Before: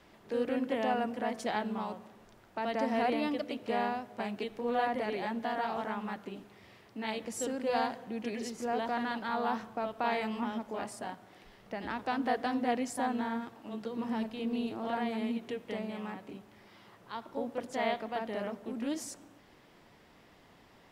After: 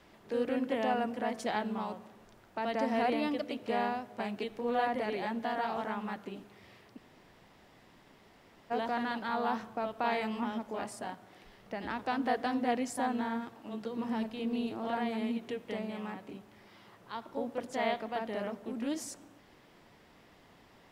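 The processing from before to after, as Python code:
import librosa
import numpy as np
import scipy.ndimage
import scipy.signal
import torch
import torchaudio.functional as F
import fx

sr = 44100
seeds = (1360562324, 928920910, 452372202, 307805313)

y = fx.edit(x, sr, fx.room_tone_fill(start_s=6.97, length_s=1.74, crossfade_s=0.02), tone=tone)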